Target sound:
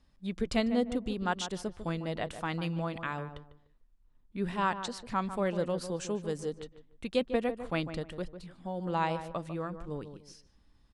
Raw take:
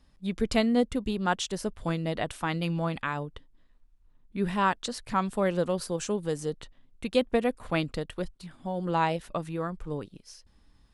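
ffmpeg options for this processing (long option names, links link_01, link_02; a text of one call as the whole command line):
ffmpeg -i in.wav -filter_complex "[0:a]lowpass=9300,asplit=2[link_01][link_02];[link_02]adelay=149,lowpass=frequency=1400:poles=1,volume=-9.5dB,asplit=2[link_03][link_04];[link_04]adelay=149,lowpass=frequency=1400:poles=1,volume=0.28,asplit=2[link_05][link_06];[link_06]adelay=149,lowpass=frequency=1400:poles=1,volume=0.28[link_07];[link_03][link_05][link_07]amix=inputs=3:normalize=0[link_08];[link_01][link_08]amix=inputs=2:normalize=0,volume=-4.5dB" out.wav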